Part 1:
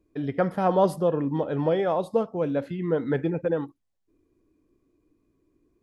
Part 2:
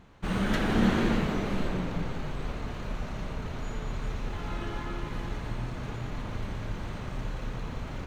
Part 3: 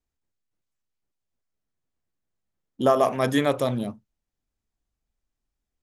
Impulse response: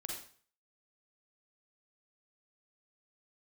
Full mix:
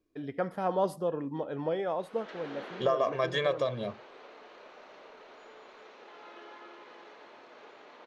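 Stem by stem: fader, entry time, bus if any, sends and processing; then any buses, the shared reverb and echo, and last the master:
-6.5 dB, 0.00 s, no bus, no send, auto duck -7 dB, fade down 0.85 s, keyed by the third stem
-17.0 dB, 1.75 s, bus A, no send, AGC gain up to 14 dB; ladder high-pass 340 Hz, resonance 30%
-1.5 dB, 0.00 s, bus A, no send, comb 1.8 ms, depth 91%
bus A: 0.0 dB, LPF 5500 Hz 24 dB/oct; compressor 3:1, threshold -26 dBFS, peak gain reduction 10.5 dB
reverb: off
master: low shelf 170 Hz -10 dB

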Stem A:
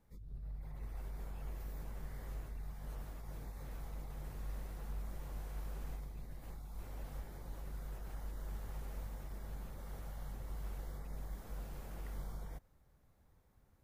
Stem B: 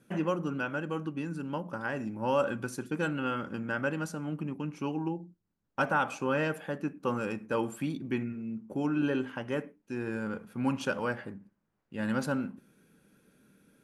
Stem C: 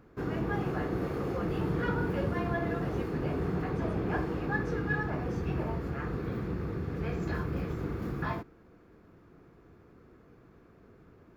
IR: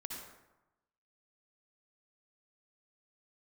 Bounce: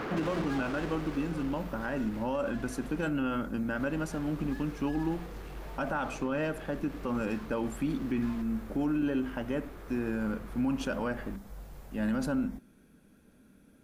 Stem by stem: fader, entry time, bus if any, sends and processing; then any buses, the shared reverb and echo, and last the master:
-0.5 dB, 0.00 s, no send, dry
-1.0 dB, 0.00 s, no send, small resonant body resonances 250/640 Hz, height 7 dB, ringing for 25 ms
+1.5 dB, 0.00 s, muted 3.09–3.75, no send, compressor 6:1, threshold -38 dBFS, peak gain reduction 12 dB; overdrive pedal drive 39 dB, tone 3600 Hz, clips at -28 dBFS; auto duck -15 dB, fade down 1.80 s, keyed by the first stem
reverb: off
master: limiter -22.5 dBFS, peak gain reduction 9 dB

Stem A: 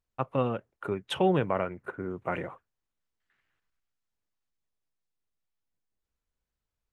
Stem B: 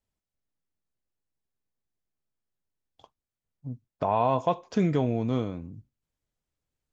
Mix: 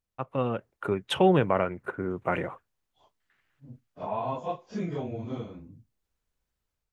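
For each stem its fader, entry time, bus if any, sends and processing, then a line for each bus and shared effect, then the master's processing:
-4.0 dB, 0.00 s, no send, AGC gain up to 8 dB
-7.5 dB, 0.00 s, no send, phase scrambler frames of 0.1 s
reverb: off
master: dry

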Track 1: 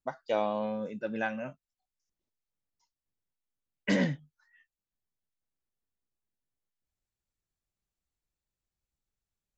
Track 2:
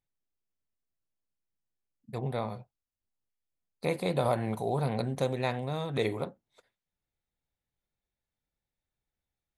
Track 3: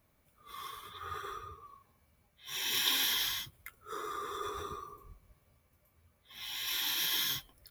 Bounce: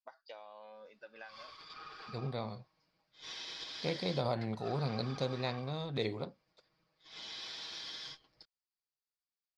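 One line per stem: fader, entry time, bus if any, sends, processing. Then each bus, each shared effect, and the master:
-7.5 dB, 0.00 s, bus A, no send, HPF 740 Hz 12 dB/oct
-8.5 dB, 0.00 s, no bus, no send, gate with hold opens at -60 dBFS; low shelf 330 Hz +7 dB
-1.5 dB, 0.75 s, bus A, no send, minimum comb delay 6.3 ms; low shelf 190 Hz -8.5 dB
bus A: 0.0 dB, LPF 2000 Hz 6 dB/oct; compressor 12:1, threshold -47 dBFS, peak gain reduction 13 dB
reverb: off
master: synth low-pass 4800 Hz, resonance Q 8; low shelf 120 Hz -5 dB

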